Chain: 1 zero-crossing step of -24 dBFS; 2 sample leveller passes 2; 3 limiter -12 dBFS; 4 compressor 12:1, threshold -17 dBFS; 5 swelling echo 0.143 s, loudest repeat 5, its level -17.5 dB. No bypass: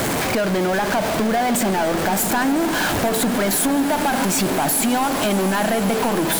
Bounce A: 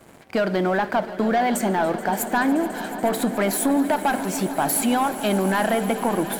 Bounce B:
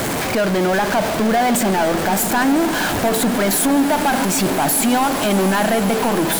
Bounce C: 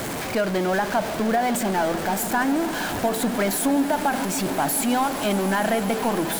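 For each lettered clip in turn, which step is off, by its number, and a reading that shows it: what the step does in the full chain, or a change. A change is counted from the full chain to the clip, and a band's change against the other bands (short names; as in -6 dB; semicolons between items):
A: 1, distortion -10 dB; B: 4, mean gain reduction 2.0 dB; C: 2, crest factor change +3.5 dB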